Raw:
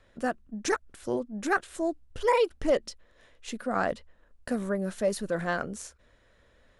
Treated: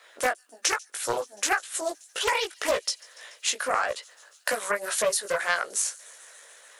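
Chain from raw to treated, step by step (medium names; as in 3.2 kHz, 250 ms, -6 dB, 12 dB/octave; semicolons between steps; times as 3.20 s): high-pass 450 Hz 24 dB/octave; tilt shelf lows -5.5 dB, about 630 Hz; harmonic-percussive split percussive +9 dB; treble shelf 7.9 kHz +8 dB; compression 16:1, threshold -25 dBFS, peak gain reduction 17.5 dB; chorus 1.8 Hz, delay 17 ms, depth 3 ms; on a send: feedback echo behind a high-pass 144 ms, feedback 83%, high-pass 4.4 kHz, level -21.5 dB; on the sum: loudspeaker Doppler distortion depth 0.28 ms; trim +6.5 dB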